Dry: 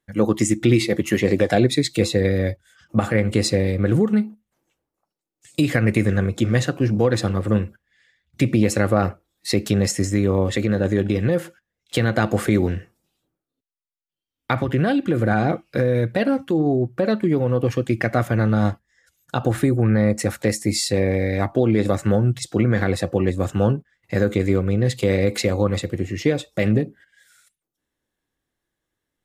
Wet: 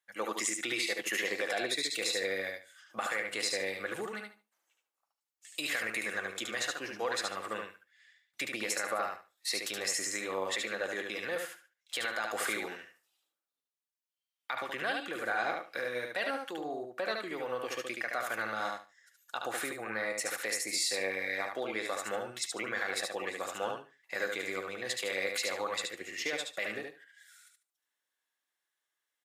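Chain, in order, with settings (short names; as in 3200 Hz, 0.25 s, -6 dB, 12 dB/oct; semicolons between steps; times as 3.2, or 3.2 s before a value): HPF 1000 Hz 12 dB/oct; limiter -19 dBFS, peak gain reduction 10 dB; feedback echo 73 ms, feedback 20%, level -4 dB; gain -3.5 dB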